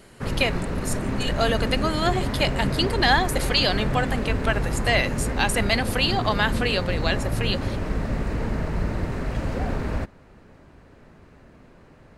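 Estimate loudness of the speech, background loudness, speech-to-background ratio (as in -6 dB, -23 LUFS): -24.5 LUFS, -28.0 LUFS, 3.5 dB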